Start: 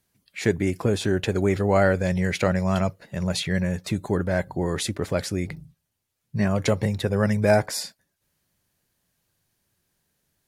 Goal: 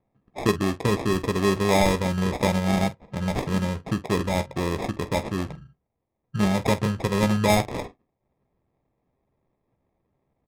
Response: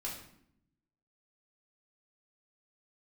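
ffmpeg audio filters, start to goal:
-filter_complex "[0:a]acrusher=samples=30:mix=1:aa=0.000001,adynamicsmooth=sensitivity=4:basefreq=2.1k,asplit=2[a][b];[b]aecho=0:1:15|47:0.299|0.178[c];[a][c]amix=inputs=2:normalize=0" -ar 48000 -c:a libmp3lame -b:a 80k

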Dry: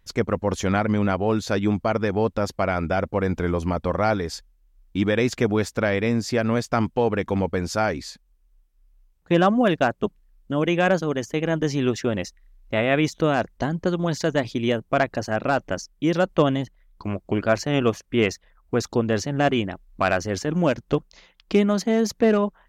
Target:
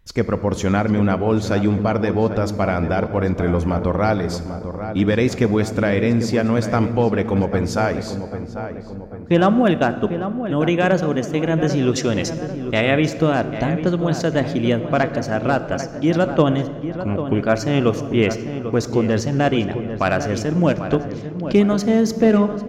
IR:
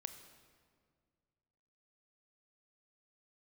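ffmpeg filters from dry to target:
-filter_complex "[0:a]asettb=1/sr,asplit=3[a][b][c];[a]atrim=end=11.924[d];[b]atrim=start=11.92:end=12.91,asetpts=PTS-STARTPTS,afade=t=in:d=0.004:c=qsin,afade=t=out:st=0.986:d=0.004:c=qsin,equalizer=f=6.3k:w=0.38:g=9[e];[c]atrim=start=12.906[f];[d][e]acrossfade=d=0.004:c1=hsin:c2=qsin[g];[g][f]acrossfade=d=0.004:c1=qsin:c2=hsin,asplit=2[h][i];[i]adelay=794,lowpass=f=1.7k:p=1,volume=-9.5dB,asplit=2[j][k];[k]adelay=794,lowpass=f=1.7k:p=1,volume=0.53,asplit=2[l][m];[m]adelay=794,lowpass=f=1.7k:p=1,volume=0.53,asplit=2[n][o];[o]adelay=794,lowpass=f=1.7k:p=1,volume=0.53,asplit=2[p][q];[q]adelay=794,lowpass=f=1.7k:p=1,volume=0.53,asplit=2[r][s];[s]adelay=794,lowpass=f=1.7k:p=1,volume=0.53[t];[h][j][l][n][p][r][t]amix=inputs=7:normalize=0,asplit=2[u][v];[1:a]atrim=start_sample=2205,lowshelf=f=440:g=6.5[w];[v][w]afir=irnorm=-1:irlink=0,volume=8dB[x];[u][x]amix=inputs=2:normalize=0,volume=-7.5dB"

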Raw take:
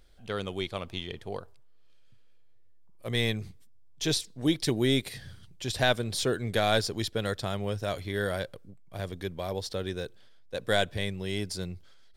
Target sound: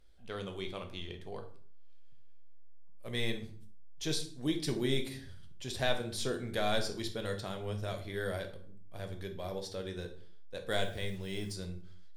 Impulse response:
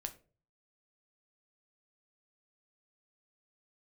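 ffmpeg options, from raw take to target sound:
-filter_complex "[1:a]atrim=start_sample=2205,afade=t=out:st=0.25:d=0.01,atrim=end_sample=11466,asetrate=26019,aresample=44100[a];[0:a][a]afir=irnorm=-1:irlink=0,asettb=1/sr,asplit=3[b][c][d];[b]atrim=end=10.714[e];[c]atrim=start=10.71:end=11.54,asetpts=PTS-STARTPTS,afade=t=in:d=0.004:c=qsin,afade=t=out:st=0.826:d=0.004:c=qsin,acrusher=bits=7:mix=0:aa=0.5[f];[d]atrim=start=11.536[g];[e][f]acrossfade=d=0.004:c1=hsin:c2=qsin[h];[h][g]acrossfade=d=0.004:c1=qsin:c2=hsin,volume=-7.5dB"

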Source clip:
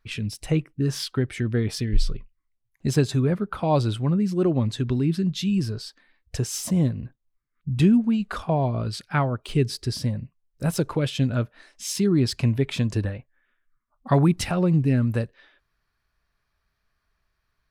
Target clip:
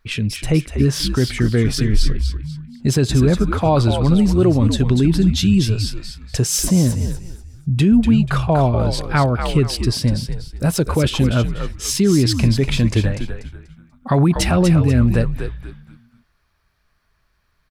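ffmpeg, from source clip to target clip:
-filter_complex "[0:a]alimiter=limit=-15dB:level=0:latency=1:release=14,asplit=5[a][b][c][d][e];[b]adelay=243,afreqshift=-88,volume=-7dB[f];[c]adelay=486,afreqshift=-176,volume=-17.2dB[g];[d]adelay=729,afreqshift=-264,volume=-27.3dB[h];[e]adelay=972,afreqshift=-352,volume=-37.5dB[i];[a][f][g][h][i]amix=inputs=5:normalize=0,asettb=1/sr,asplit=3[j][k][l];[j]atrim=end=4.004[m];[k]atrim=start=4:end=6.65,asetpts=PTS-STARTPTS,afade=t=in:d=0.004:c=qsin,afade=t=out:st=2.646:d=0.004:c=qsin,adynamicequalizer=threshold=0.00708:dfrequency=4400:dqfactor=0.7:tfrequency=4400:tqfactor=0.7:attack=5:release=100:ratio=0.375:range=2:mode=boostabove:tftype=highshelf[n];[l]atrim=start=6.646[o];[m][n]acrossfade=d=0.004:c1=hsin:c2=qsin[p];[p][o]acrossfade=d=0.004:c1=qsin:c2=hsin,volume=8dB"

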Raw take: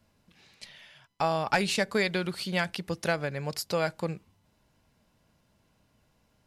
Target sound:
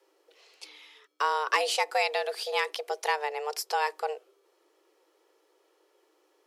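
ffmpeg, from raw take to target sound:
-af "afreqshift=300,acontrast=58,volume=-6dB"

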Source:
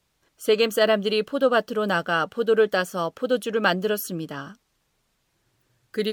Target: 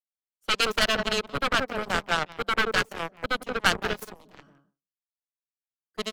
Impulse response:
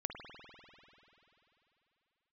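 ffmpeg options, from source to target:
-filter_complex "[0:a]asplit=2[a][b];[b]adelay=175,lowpass=f=830:p=1,volume=-3dB,asplit=2[c][d];[d]adelay=175,lowpass=f=830:p=1,volume=0.26,asplit=2[e][f];[f]adelay=175,lowpass=f=830:p=1,volume=0.26,asplit=2[g][h];[h]adelay=175,lowpass=f=830:p=1,volume=0.26[i];[a][c][e][g][i]amix=inputs=5:normalize=0,aeval=exprs='0.501*(cos(1*acos(clip(val(0)/0.501,-1,1)))-cos(1*PI/2))+0.178*(cos(2*acos(clip(val(0)/0.501,-1,1)))-cos(2*PI/2))+0.02*(cos(4*acos(clip(val(0)/0.501,-1,1)))-cos(4*PI/2))+0.0794*(cos(7*acos(clip(val(0)/0.501,-1,1)))-cos(7*PI/2))+0.00316*(cos(8*acos(clip(val(0)/0.501,-1,1)))-cos(8*PI/2))':c=same,acrossover=split=190|900[j][k][l];[k]aeval=exprs='0.0562*(abs(mod(val(0)/0.0562+3,4)-2)-1)':c=same[m];[j][m][l]amix=inputs=3:normalize=0,agate=range=-33dB:threshold=-55dB:ratio=3:detection=peak"

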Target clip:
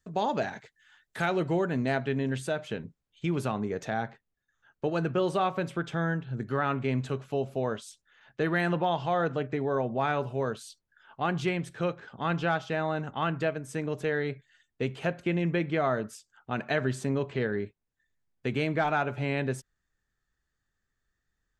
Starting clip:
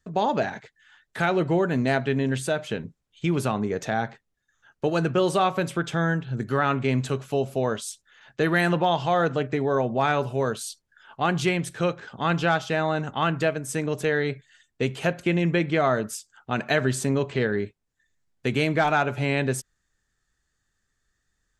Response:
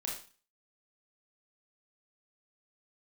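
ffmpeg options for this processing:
-af "asetnsamples=n=441:p=0,asendcmd='1.65 highshelf g -5.5;4.03 highshelf g -11.5',highshelf=f=5.5k:g=4,volume=-5dB"

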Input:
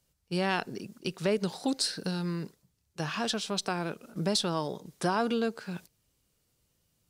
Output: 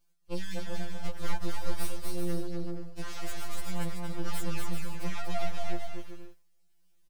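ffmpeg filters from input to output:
-filter_complex "[0:a]asettb=1/sr,asplit=3[a][b][c];[a]atrim=end=0.634[d];[b]atrim=start=0.63:end=1.33,asetpts=PTS-STARTPTS,afade=t=in:d=0.004:c=qsin,afade=t=out:st=0.696:d=0.004:c=qsin,equalizer=f=540:w=0.82:g=12[e];[c]atrim=start=1.326[f];[d][e]acrossfade=d=0.004:c1=hsin:c2=qsin[g];[g][f]acrossfade=d=0.004:c1=qsin:c2=hsin,aeval=exprs='abs(val(0))':c=same,tremolo=f=0.71:d=0.4,asoftclip=type=tanh:threshold=-26dB,aecho=1:1:240|384|470.4|522.2|553.3:0.631|0.398|0.251|0.158|0.1,afftfilt=real='re*2.83*eq(mod(b,8),0)':imag='im*2.83*eq(mod(b,8),0)':win_size=2048:overlap=0.75,volume=1dB"

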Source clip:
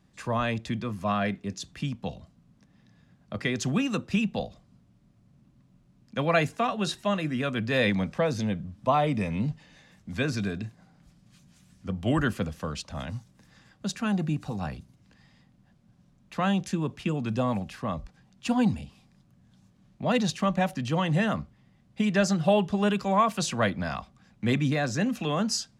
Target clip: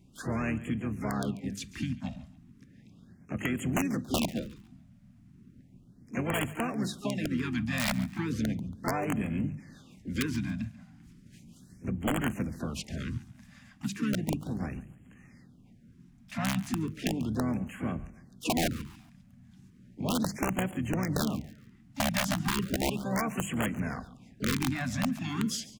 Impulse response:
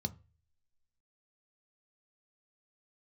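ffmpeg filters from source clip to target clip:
-filter_complex "[0:a]asplit=4[a][b][c][d];[b]asetrate=29433,aresample=44100,atempo=1.49831,volume=-7dB[e];[c]asetrate=58866,aresample=44100,atempo=0.749154,volume=-11dB[f];[d]asetrate=88200,aresample=44100,atempo=0.5,volume=-16dB[g];[a][e][f][g]amix=inputs=4:normalize=0,equalizer=f=250:t=o:w=1:g=6,equalizer=f=500:t=o:w=1:g=-4,equalizer=f=1k:t=o:w=1:g=-7,equalizer=f=2k:t=o:w=1:g=3,equalizer=f=4k:t=o:w=1:g=-5,aeval=exprs='(mod(5.31*val(0)+1,2)-1)/5.31':c=same,acompressor=threshold=-35dB:ratio=2,bandreject=f=50:t=h:w=6,bandreject=f=100:t=h:w=6,bandreject=f=150:t=h:w=6,bandreject=f=200:t=h:w=6,asplit=2[h][i];[i]aecho=0:1:140|280|420:0.126|0.0415|0.0137[j];[h][j]amix=inputs=2:normalize=0,afftfilt=real='re*(1-between(b*sr/1024,380*pow(4800/380,0.5+0.5*sin(2*PI*0.35*pts/sr))/1.41,380*pow(4800/380,0.5+0.5*sin(2*PI*0.35*pts/sr))*1.41))':imag='im*(1-between(b*sr/1024,380*pow(4800/380,0.5+0.5*sin(2*PI*0.35*pts/sr))/1.41,380*pow(4800/380,0.5+0.5*sin(2*PI*0.35*pts/sr))*1.41))':win_size=1024:overlap=0.75,volume=2dB"

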